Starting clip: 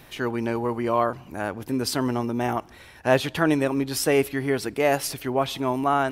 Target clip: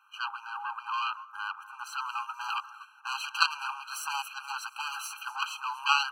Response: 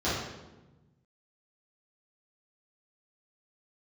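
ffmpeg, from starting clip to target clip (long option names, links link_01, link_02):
-filter_complex "[0:a]asuperstop=centerf=4600:order=4:qfactor=7.4,asetnsamples=nb_out_samples=441:pad=0,asendcmd='2 lowpass f 3500',asplit=2[link_01][link_02];[link_02]highpass=frequency=720:poles=1,volume=21dB,asoftclip=type=tanh:threshold=-4.5dB[link_03];[link_01][link_03]amix=inputs=2:normalize=0,lowpass=frequency=1300:poles=1,volume=-6dB,superequalizer=8b=0.501:9b=0.631,aecho=1:1:238|476|714|952|1190:0.126|0.073|0.0424|0.0246|0.0142,agate=range=-10dB:threshold=-31dB:ratio=16:detection=peak,highpass=frequency=250:width=0.5412,highpass=frequency=250:width=1.3066,equalizer=frequency=1300:width_type=o:width=0.44:gain=10,aeval=exprs='1.12*(cos(1*acos(clip(val(0)/1.12,-1,1)))-cos(1*PI/2))+0.501*(cos(3*acos(clip(val(0)/1.12,-1,1)))-cos(3*PI/2))+0.0794*(cos(4*acos(clip(val(0)/1.12,-1,1)))-cos(4*PI/2))+0.0398*(cos(5*acos(clip(val(0)/1.12,-1,1)))-cos(5*PI/2))+0.0158*(cos(7*acos(clip(val(0)/1.12,-1,1)))-cos(7*PI/2))':channel_layout=same,afftfilt=real='re*eq(mod(floor(b*sr/1024/800),2),1)':imag='im*eq(mod(floor(b*sr/1024/800),2),1)':win_size=1024:overlap=0.75"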